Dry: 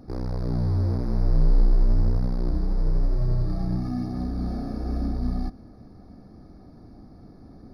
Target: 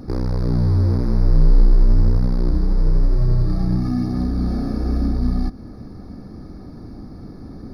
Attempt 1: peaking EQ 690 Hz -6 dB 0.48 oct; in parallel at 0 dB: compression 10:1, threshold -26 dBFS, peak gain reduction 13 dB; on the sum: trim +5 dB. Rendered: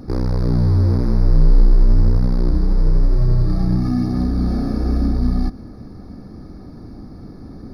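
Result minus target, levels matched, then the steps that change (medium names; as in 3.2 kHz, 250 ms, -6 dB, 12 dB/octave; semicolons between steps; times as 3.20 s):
compression: peak gain reduction -7 dB
change: compression 10:1, threshold -33.5 dBFS, peak gain reduction 19.5 dB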